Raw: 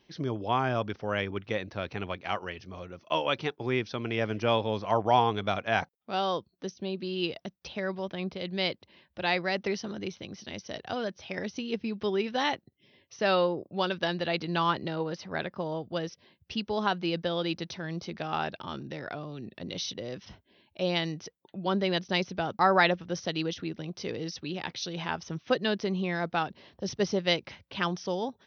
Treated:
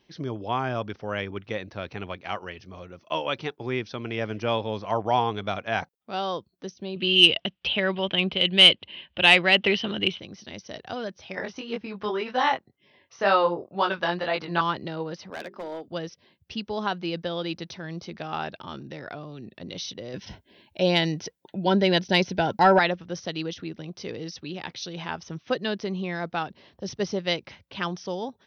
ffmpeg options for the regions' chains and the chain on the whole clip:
ffmpeg -i in.wav -filter_complex "[0:a]asettb=1/sr,asplit=3[link_01][link_02][link_03];[link_01]atrim=end=6.964[link_04];[link_02]atrim=start=6.96:end=10.2,asetpts=PTS-STARTPTS,afade=type=in:duration=0.004:curve=qsin,afade=type=out:start_time=3.236:duration=0.004:curve=qsin,lowpass=frequency=3000:width_type=q:width=7.6,acontrast=59[link_05];[link_03]atrim=start=10.196[link_06];[link_04][link_05]acrossfade=duration=0.004:curve1=hsin:curve2=qsin[link_07];[link_07][link_06]acrossfade=duration=0.004:curve1=qsin:curve2=hsin,asettb=1/sr,asplit=3[link_08][link_09][link_10];[link_08]atrim=end=11.354[link_11];[link_09]atrim=start=11.35:end=14.61,asetpts=PTS-STARTPTS,afade=type=in:duration=0.004:curve=qsin,afade=type=out:start_time=3.256:duration=0.004:curve=qsin,equalizer=frequency=1100:width=0.66:gain=12,flanger=delay=19.5:depth=3.8:speed=2[link_12];[link_10]atrim=start=14.606[link_13];[link_11][link_12]acrossfade=duration=0.004:curve1=hsin:curve2=qsin[link_14];[link_14][link_13]acrossfade=duration=0.004:curve1=qsin:curve2=hsin,asettb=1/sr,asplit=3[link_15][link_16][link_17];[link_15]atrim=end=15.304[link_18];[link_16]atrim=start=15.3:end=15.88,asetpts=PTS-STARTPTS,afade=type=in:duration=0.004:curve=qsin,afade=type=out:start_time=0.576:duration=0.004:curve=qsin,highpass=frequency=220:width=0.5412,highpass=frequency=220:width=1.3066,bandreject=frequency=50:width_type=h:width=6,bandreject=frequency=100:width_type=h:width=6,bandreject=frequency=150:width_type=h:width=6,bandreject=frequency=200:width_type=h:width=6,bandreject=frequency=250:width_type=h:width=6,bandreject=frequency=300:width_type=h:width=6,bandreject=frequency=350:width_type=h:width=6,bandreject=frequency=400:width_type=h:width=6,asoftclip=type=hard:threshold=-29.5dB[link_19];[link_17]atrim=start=15.876[link_20];[link_18][link_19]acrossfade=duration=0.004:curve1=hsin:curve2=qsin[link_21];[link_21][link_20]acrossfade=duration=0.004:curve1=qsin:curve2=hsin,asettb=1/sr,asplit=3[link_22][link_23][link_24];[link_22]atrim=end=20.144[link_25];[link_23]atrim=start=20.14:end=22.79,asetpts=PTS-STARTPTS,afade=type=in:duration=0.004:curve=qsin,afade=type=out:start_time=2.646:duration=0.004:curve=qsin,acontrast=83,asuperstop=centerf=1200:order=12:qfactor=5.1[link_26];[link_24]atrim=start=22.786[link_27];[link_25][link_26]acrossfade=duration=0.004:curve1=hsin:curve2=qsin[link_28];[link_28][link_27]acrossfade=duration=0.004:curve1=qsin:curve2=hsin" out.wav

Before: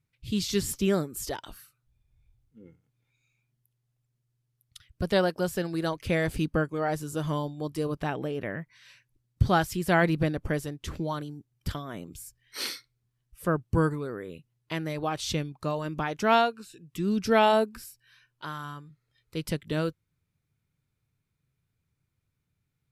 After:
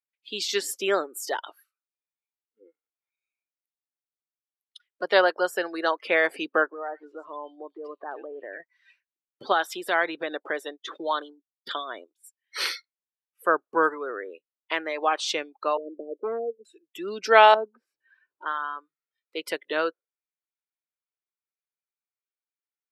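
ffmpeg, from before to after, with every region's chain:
ffmpeg -i in.wav -filter_complex "[0:a]asettb=1/sr,asplit=3[link_01][link_02][link_03];[link_01]atrim=end=6.664[link_04];[link_02]atrim=start=6.66:end=8.6,asetpts=PTS-STARTPTS,afade=type=in:duration=0.004:curve=qsin,afade=type=out:start_time=1.936:duration=0.004:curve=qsin,lowpass=3700,acompressor=threshold=-36dB:ratio=4:attack=3.2:release=140:knee=1:detection=peak,acrossover=split=2100[link_05][link_06];[link_06]adelay=100[link_07];[link_05][link_07]amix=inputs=2:normalize=0,atrim=end_sample=85554[link_08];[link_03]atrim=start=8.596[link_09];[link_04][link_08]acrossfade=duration=0.004:curve1=hsin:curve2=qsin[link_10];[link_10][link_09]acrossfade=duration=0.004:curve1=qsin:curve2=hsin,asettb=1/sr,asplit=3[link_11][link_12][link_13];[link_11]atrim=end=9.524[link_14];[link_12]atrim=start=9.52:end=12.24,asetpts=PTS-STARTPTS,afade=type=in:duration=0.004:curve=qsin,afade=type=out:start_time=2.716:duration=0.004:curve=qsin,agate=range=-33dB:threshold=-37dB:ratio=3:release=100:detection=peak,equalizer=frequency=3600:width=6.7:gain=10.5,acompressor=threshold=-25dB:ratio=4:attack=3.2:release=140:knee=1:detection=peak[link_15];[link_13]atrim=start=12.236[link_16];[link_14][link_15]acrossfade=duration=0.004:curve1=hsin:curve2=qsin[link_17];[link_17][link_16]acrossfade=duration=0.004:curve1=qsin:curve2=hsin,asettb=1/sr,asplit=3[link_18][link_19][link_20];[link_18]atrim=end=15.774[link_21];[link_19]atrim=start=15.77:end=16.65,asetpts=PTS-STARTPTS,afade=type=in:duration=0.004:curve=qsin,afade=type=out:start_time=0.876:duration=0.004:curve=qsin,asuperpass=centerf=340:order=12:qfactor=0.95,asoftclip=type=hard:threshold=-24.5dB[link_22];[link_20]atrim=start=16.646[link_23];[link_21][link_22]acrossfade=duration=0.004:curve1=hsin:curve2=qsin[link_24];[link_24][link_23]acrossfade=duration=0.004:curve1=qsin:curve2=hsin,asettb=1/sr,asplit=3[link_25][link_26][link_27];[link_25]atrim=end=17.544[link_28];[link_26]atrim=start=17.54:end=18.46,asetpts=PTS-STARTPTS,afade=type=in:duration=0.004:curve=qsin,afade=type=out:start_time=0.916:duration=0.004:curve=qsin,bandpass=frequency=150:width_type=q:width=0.75,acompressor=mode=upward:threshold=-36dB:ratio=2.5:attack=3.2:release=140:knee=2.83:detection=peak[link_29];[link_27]atrim=start=18.456[link_30];[link_28][link_29]acrossfade=duration=0.004:curve1=hsin:curve2=qsin[link_31];[link_31][link_30]acrossfade=duration=0.004:curve1=qsin:curve2=hsin,highpass=frequency=360:width=0.5412,highpass=frequency=360:width=1.3066,afftdn=noise_reduction=24:noise_floor=-45,equalizer=frequency=1500:width=0.42:gain=10" out.wav

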